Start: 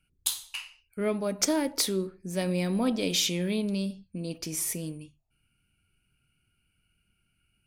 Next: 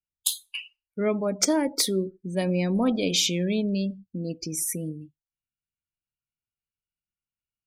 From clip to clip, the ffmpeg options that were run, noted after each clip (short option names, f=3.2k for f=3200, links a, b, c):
-af "afftdn=nr=31:nf=-38,volume=3.5dB"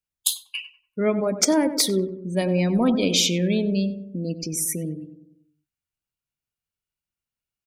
-filter_complex "[0:a]asplit=2[a][b];[b]adelay=96,lowpass=f=1.1k:p=1,volume=-9dB,asplit=2[c][d];[d]adelay=96,lowpass=f=1.1k:p=1,volume=0.54,asplit=2[e][f];[f]adelay=96,lowpass=f=1.1k:p=1,volume=0.54,asplit=2[g][h];[h]adelay=96,lowpass=f=1.1k:p=1,volume=0.54,asplit=2[i][j];[j]adelay=96,lowpass=f=1.1k:p=1,volume=0.54,asplit=2[k][l];[l]adelay=96,lowpass=f=1.1k:p=1,volume=0.54[m];[a][c][e][g][i][k][m]amix=inputs=7:normalize=0,volume=3dB"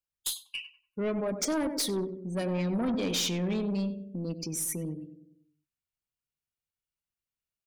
-af "aeval=exprs='(tanh(10*val(0)+0.1)-tanh(0.1))/10':c=same,volume=-5dB"